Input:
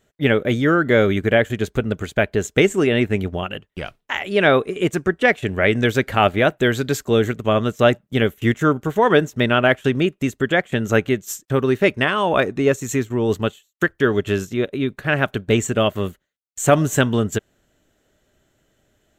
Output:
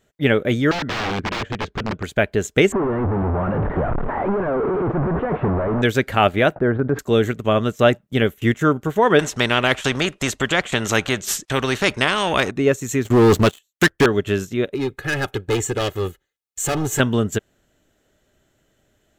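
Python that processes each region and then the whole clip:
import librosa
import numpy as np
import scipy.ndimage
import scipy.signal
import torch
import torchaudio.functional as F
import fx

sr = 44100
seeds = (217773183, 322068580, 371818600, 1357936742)

y = fx.chain(x, sr, fx.overflow_wrap(gain_db=16.5),
    fx.air_absorb(metres=200.0), at=(0.71, 2.03))
y = fx.chain(y, sr, fx.clip_1bit(),
    fx.lowpass(hz=1300.0, slope=24),
    fx.transient(attack_db=7, sustain_db=0), at=(2.72, 5.82))
y = fx.chain(y, sr, fx.lowpass(hz=1400.0, slope=24),
    fx.transient(attack_db=-2, sustain_db=-10),
    fx.env_flatten(amount_pct=70), at=(6.56, 6.99))
y = fx.chain(y, sr, fx.lowpass(hz=8100.0, slope=12),
    fx.spectral_comp(ratio=2.0), at=(9.19, 12.51))
y = fx.chain(y, sr, fx.leveller(passes=3),
    fx.clip_hard(threshold_db=-10.0), at=(13.05, 14.06))
y = fx.chain(y, sr, fx.clip_hard(threshold_db=-18.5),
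    fx.comb(ms=2.4, depth=0.63), at=(14.74, 17.0))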